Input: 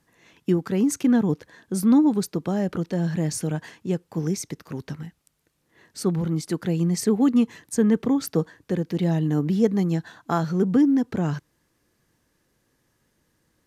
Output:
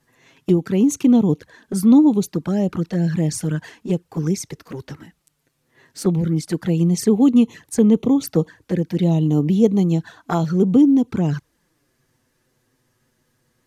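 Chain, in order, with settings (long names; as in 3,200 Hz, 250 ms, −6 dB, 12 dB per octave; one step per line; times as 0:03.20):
flanger swept by the level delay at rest 8.1 ms, full sweep at −19.5 dBFS
level +5.5 dB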